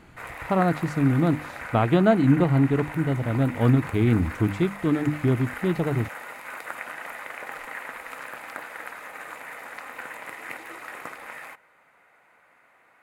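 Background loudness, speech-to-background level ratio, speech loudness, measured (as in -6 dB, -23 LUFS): -37.0 LUFS, 14.0 dB, -23.0 LUFS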